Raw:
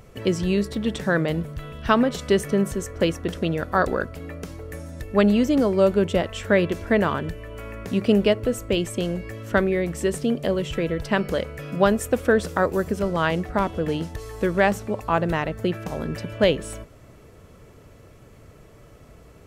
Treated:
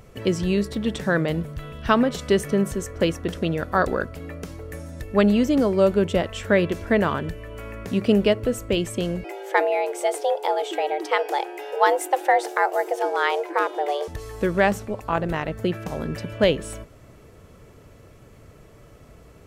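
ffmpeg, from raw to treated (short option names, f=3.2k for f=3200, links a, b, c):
-filter_complex "[0:a]asettb=1/sr,asplit=3[a][b][c];[a]atrim=end=9.244[d];[b]atrim=start=9.24:end=14.08,asetpts=PTS-STARTPTS,afade=t=in:d=0.004:c=qsin,afade=t=out:st=4.836:d=0.004:c=qsin,afreqshift=280[e];[c]atrim=start=14.076[f];[d][e]acrossfade=d=0.004:c1=hsin:c2=qsin[g];[g][f]acrossfade=d=0.004:c1=qsin:c2=hsin,asettb=1/sr,asplit=3[h][i][j];[h]atrim=end=14.854[k];[i]atrim=start=14.85:end=15.48,asetpts=PTS-STARTPTS,afade=t=in:d=0.004:c=qsin,afade=t=out:st=0.626:d=0.004:c=qsin,tremolo=f=210:d=0.519[l];[j]atrim=start=15.476[m];[k][l]acrossfade=d=0.004:c1=hsin:c2=qsin[n];[n][m]acrossfade=d=0.004:c1=qsin:c2=hsin"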